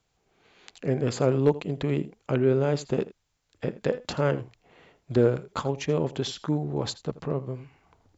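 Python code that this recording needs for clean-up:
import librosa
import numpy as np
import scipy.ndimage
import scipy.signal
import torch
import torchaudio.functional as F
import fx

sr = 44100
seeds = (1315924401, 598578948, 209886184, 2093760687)

y = fx.fix_declip(x, sr, threshold_db=-10.0)
y = fx.fix_echo_inverse(y, sr, delay_ms=82, level_db=-17.5)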